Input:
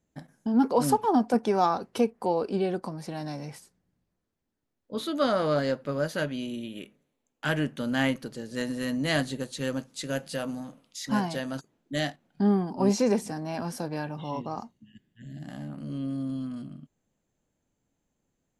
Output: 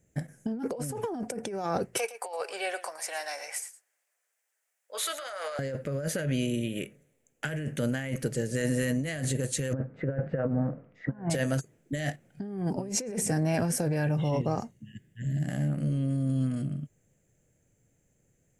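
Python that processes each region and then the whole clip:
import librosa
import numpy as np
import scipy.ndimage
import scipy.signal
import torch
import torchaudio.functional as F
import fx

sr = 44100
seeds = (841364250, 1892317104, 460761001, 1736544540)

y = fx.chain(x, sr, fx.highpass(hz=770.0, slope=24),
    fx.over_compress(threshold_db=-38.0, ratio=-1.0),
    fx.echo_single(ms=112, db=-14.5), at=(1.97, 5.59))
y = fx.chain(y, sr, fx.lowpass(hz=1500.0, slope=24),
    fx.over_compress(threshold_db=-35.0, ratio=-0.5), at=(9.73, 11.3))
y = fx.graphic_eq_10(y, sr, hz=(125, 250, 500, 1000, 2000, 4000, 8000), db=(8, -6, 5, -12, 6, -11, 8))
y = fx.over_compress(y, sr, threshold_db=-33.0, ratio=-1.0)
y = y * librosa.db_to_amplitude(3.5)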